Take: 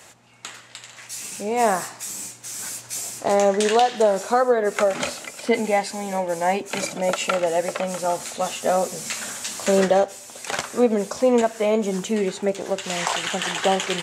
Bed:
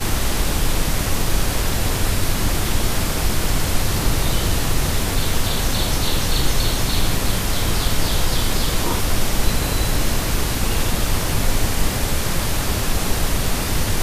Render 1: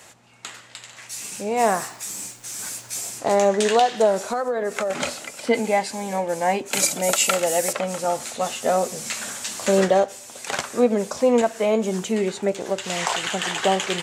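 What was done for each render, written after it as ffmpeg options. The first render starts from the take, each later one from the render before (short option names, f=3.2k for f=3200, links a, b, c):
-filter_complex "[0:a]asettb=1/sr,asplit=3[a][b][c];[a]atrim=end=1.604[d];[b]atrim=start=1.6:end=3.08,asetpts=PTS-STARTPTS,afade=t=in:d=0.004:c=qsin,afade=t=out:st=1.476:d=0.004:c=qsin,acrusher=bits=9:dc=4:mix=0:aa=0.000001[e];[c]atrim=start=3.076[f];[d][e]acrossfade=d=0.004:c1=hsin:c2=qsin[g];[g][f]acrossfade=d=0.004:c1=qsin:c2=hsin,asettb=1/sr,asplit=3[h][i][j];[h]atrim=end=4.194[k];[i]atrim=start=4.19:end=4.9,asetpts=PTS-STARTPTS,afade=t=in:d=0.004:c=qsin,afade=t=out:st=0.706:d=0.004:c=qsin,acompressor=threshold=-20dB:ratio=6:attack=3.2:release=140:knee=1:detection=peak[l];[j]atrim=start=4.896[m];[k][l]acrossfade=d=0.004:c1=hsin:c2=qsin[n];[n][m]acrossfade=d=0.004:c1=qsin:c2=hsin,asettb=1/sr,asplit=3[o][p][q];[o]atrim=end=6.734[r];[p]atrim=start=6.73:end=7.73,asetpts=PTS-STARTPTS,afade=t=in:d=0.004:c=qsin,afade=t=out:st=0.996:d=0.004:c=qsin,aemphasis=mode=production:type=75fm[s];[q]atrim=start=7.726[t];[r][s]acrossfade=d=0.004:c1=hsin:c2=qsin[u];[u][t]acrossfade=d=0.004:c1=qsin:c2=hsin"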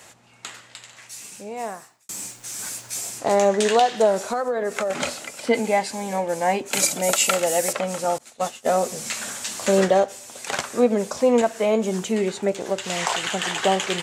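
-filter_complex "[0:a]asettb=1/sr,asplit=3[a][b][c];[a]atrim=end=8.184[d];[b]atrim=start=8.18:end=8.8,asetpts=PTS-STARTPTS,afade=t=in:d=0.004:c=qsin,afade=t=out:st=0.616:d=0.004:c=qsin,agate=range=-33dB:threshold=-24dB:ratio=3:release=100:detection=peak[e];[c]atrim=start=8.796[f];[d][e]acrossfade=d=0.004:c1=hsin:c2=qsin[g];[g][f]acrossfade=d=0.004:c1=qsin:c2=hsin,asplit=2[h][i];[h]atrim=end=2.09,asetpts=PTS-STARTPTS,afade=t=out:st=0.46:d=1.63[j];[i]atrim=start=2.09,asetpts=PTS-STARTPTS,afade=t=in:d=0.004:c=hsin[k];[j][k]concat=n=2:v=0:a=1"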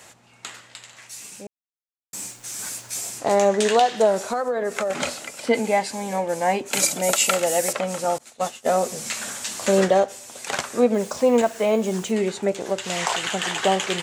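-filter_complex "[0:a]asettb=1/sr,asplit=3[a][b][c];[a]atrim=end=10.944[d];[b]atrim=start=10.94:end=12.11,asetpts=PTS-STARTPTS,afade=t=in:d=0.004:c=qsin,afade=t=out:st=1.166:d=0.004:c=qsin,acrusher=bits=6:mix=0:aa=0.5[e];[c]atrim=start=12.106[f];[d][e]acrossfade=d=0.004:c1=hsin:c2=qsin[g];[g][f]acrossfade=d=0.004:c1=qsin:c2=hsin,asplit=3[h][i][j];[h]atrim=end=1.47,asetpts=PTS-STARTPTS,afade=t=out:st=1.466:d=0.004:c=hsin[k];[i]atrim=start=1.47:end=2.13,asetpts=PTS-STARTPTS,volume=0[l];[j]atrim=start=2.13,asetpts=PTS-STARTPTS,afade=t=in:d=0.004:c=hsin[m];[k][l][m]concat=n=3:v=0:a=1"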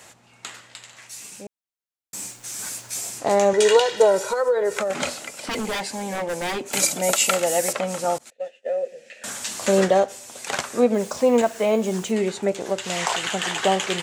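-filter_complex "[0:a]asettb=1/sr,asplit=3[a][b][c];[a]atrim=end=3.534[d];[b]atrim=start=3.53:end=4.79,asetpts=PTS-STARTPTS,afade=t=in:d=0.004:c=qsin,afade=t=out:st=1.256:d=0.004:c=qsin,aecho=1:1:2.1:0.86,atrim=end_sample=55566[e];[c]atrim=start=4.786[f];[d][e]acrossfade=d=0.004:c1=hsin:c2=qsin[g];[g][f]acrossfade=d=0.004:c1=qsin:c2=hsin,asettb=1/sr,asplit=3[h][i][j];[h]atrim=end=5.464[k];[i]atrim=start=5.46:end=6.74,asetpts=PTS-STARTPTS,afade=t=in:d=0.004:c=qsin,afade=t=out:st=1.276:d=0.004:c=qsin,aeval=exprs='0.0891*(abs(mod(val(0)/0.0891+3,4)-2)-1)':c=same[l];[j]atrim=start=6.736[m];[k][l]acrossfade=d=0.004:c1=hsin:c2=qsin[n];[n][m]acrossfade=d=0.004:c1=qsin:c2=hsin,asettb=1/sr,asplit=3[o][p][q];[o]atrim=end=8.304[r];[p]atrim=start=8.3:end=9.24,asetpts=PTS-STARTPTS,afade=t=in:d=0.004:c=qsin,afade=t=out:st=0.936:d=0.004:c=qsin,asplit=3[s][t][u];[s]bandpass=f=530:t=q:w=8,volume=0dB[v];[t]bandpass=f=1.84k:t=q:w=8,volume=-6dB[w];[u]bandpass=f=2.48k:t=q:w=8,volume=-9dB[x];[v][w][x]amix=inputs=3:normalize=0[y];[q]atrim=start=9.236[z];[r][y]acrossfade=d=0.004:c1=hsin:c2=qsin[aa];[aa][z]acrossfade=d=0.004:c1=qsin:c2=hsin"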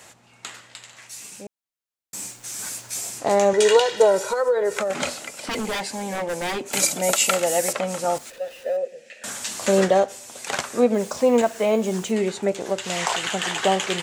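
-filter_complex "[0:a]asettb=1/sr,asplit=3[a][b][c];[a]atrim=end=8.134[d];[b]atrim=start=8.13:end=8.77,asetpts=PTS-STARTPTS,afade=t=in:d=0.004:c=qsin,afade=t=out:st=0.636:d=0.004:c=qsin,aeval=exprs='val(0)+0.5*0.0112*sgn(val(0))':c=same[e];[c]atrim=start=8.766[f];[d][e]acrossfade=d=0.004:c1=hsin:c2=qsin[g];[g][f]acrossfade=d=0.004:c1=qsin:c2=hsin"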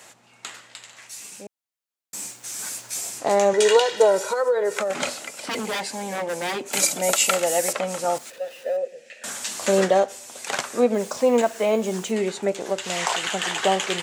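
-af "highpass=76,lowshelf=f=140:g=-8.5"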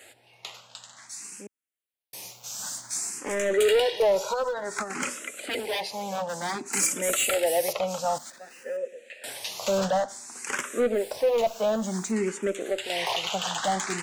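-filter_complex "[0:a]asoftclip=type=hard:threshold=-17.5dB,asplit=2[a][b];[b]afreqshift=0.55[c];[a][c]amix=inputs=2:normalize=1"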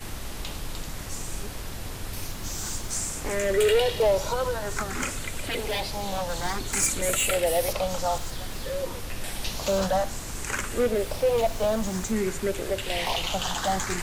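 -filter_complex "[1:a]volume=-15.5dB[a];[0:a][a]amix=inputs=2:normalize=0"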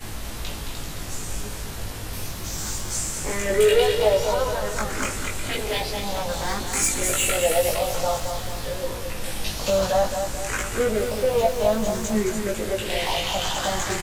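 -filter_complex "[0:a]asplit=2[a][b];[b]adelay=19,volume=-2dB[c];[a][c]amix=inputs=2:normalize=0,aecho=1:1:219|438|657|876|1095|1314:0.447|0.21|0.0987|0.0464|0.0218|0.0102"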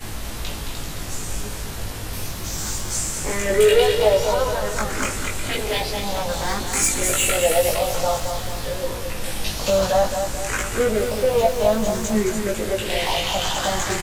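-af "volume=2.5dB"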